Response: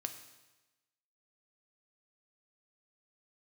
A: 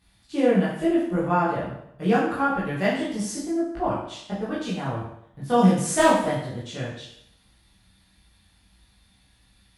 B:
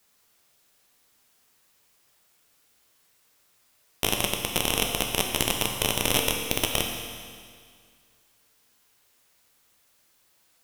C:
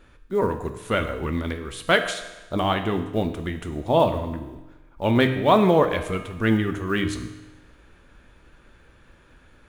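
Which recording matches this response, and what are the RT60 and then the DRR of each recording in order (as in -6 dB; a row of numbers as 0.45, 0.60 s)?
C; 0.70, 2.0, 1.1 s; -9.0, 1.5, 6.5 dB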